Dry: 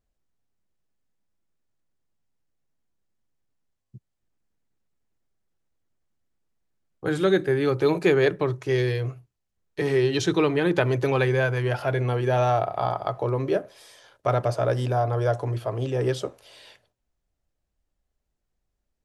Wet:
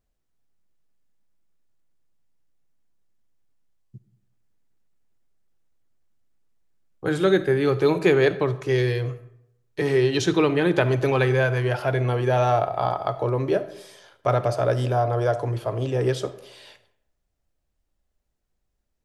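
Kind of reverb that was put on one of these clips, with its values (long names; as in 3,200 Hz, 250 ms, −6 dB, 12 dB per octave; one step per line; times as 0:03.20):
comb and all-pass reverb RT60 0.8 s, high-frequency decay 0.6×, pre-delay 10 ms, DRR 13.5 dB
level +1.5 dB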